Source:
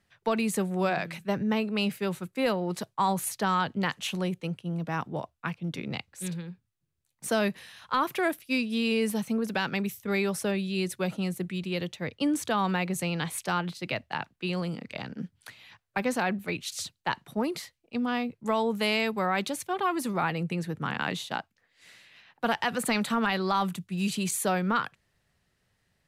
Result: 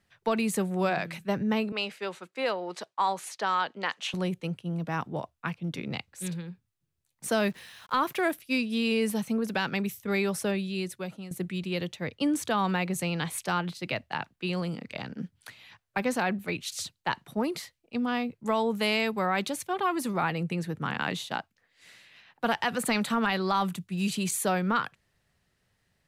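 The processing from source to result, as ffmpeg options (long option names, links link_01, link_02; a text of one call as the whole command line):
ffmpeg -i in.wav -filter_complex "[0:a]asettb=1/sr,asplit=3[link_01][link_02][link_03];[link_01]atrim=end=1.724[link_04];[link_02]atrim=start=1.72:end=4.14,asetpts=PTS-STARTPTS,afade=type=in:duration=0.004:curve=qsin,afade=type=out:start_time=2.416:duration=0.004:curve=qsin,highpass=440,lowpass=6400[link_05];[link_03]atrim=start=4.136[link_06];[link_04][link_05]acrossfade=duration=0.004:curve1=hsin:curve2=qsin[link_07];[link_07][link_06]acrossfade=duration=0.004:curve1=qsin:curve2=hsin,asettb=1/sr,asplit=3[link_08][link_09][link_10];[link_08]atrim=end=7.384[link_11];[link_09]atrim=start=7.38:end=8.33,asetpts=PTS-STARTPTS,afade=type=in:duration=0.004:curve=qsin,afade=type=out:start_time=0.946:duration=0.004:curve=qsin,acrusher=bits=8:mix=0:aa=0.5[link_12];[link_10]atrim=start=8.326[link_13];[link_11][link_12]acrossfade=duration=0.004:curve1=hsin:curve2=qsin[link_14];[link_14][link_13]acrossfade=duration=0.004:curve1=qsin:curve2=hsin,asplit=2[link_15][link_16];[link_15]atrim=end=11.31,asetpts=PTS-STARTPTS,afade=type=out:start_time=10.51:duration=0.8:silence=0.211349[link_17];[link_16]atrim=start=11.31,asetpts=PTS-STARTPTS,afade=type=in:duration=0.004:curve=hsin:silence=0.211349[link_18];[link_17][link_18]concat=n=2:v=0:a=1" out.wav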